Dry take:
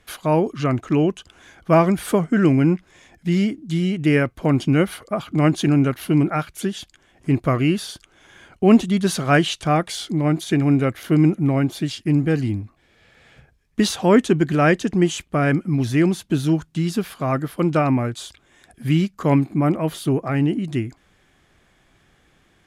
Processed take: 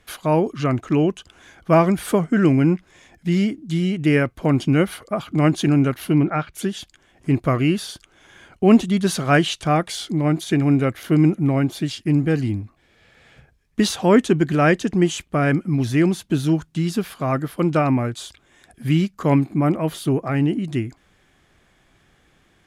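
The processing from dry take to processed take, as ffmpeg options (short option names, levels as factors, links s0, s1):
-filter_complex "[0:a]asettb=1/sr,asplit=3[s0][s1][s2];[s0]atrim=end=6.134[s3];[s1]atrim=start=6.13:end=6.53,asetpts=PTS-STARTPTS,afade=t=in:d=0.004:c=qsin,afade=t=out:st=0.396:d=0.004:c=qsin,lowpass=3700[s4];[s2]atrim=start=6.526[s5];[s3][s4]acrossfade=d=0.004:c1=hsin:c2=qsin[s6];[s6][s5]acrossfade=d=0.004:c1=qsin:c2=hsin"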